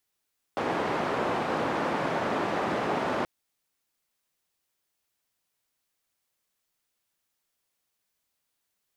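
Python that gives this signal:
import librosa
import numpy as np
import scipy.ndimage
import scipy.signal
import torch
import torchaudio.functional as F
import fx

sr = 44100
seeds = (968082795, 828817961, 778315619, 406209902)

y = fx.band_noise(sr, seeds[0], length_s=2.68, low_hz=180.0, high_hz=940.0, level_db=-28.5)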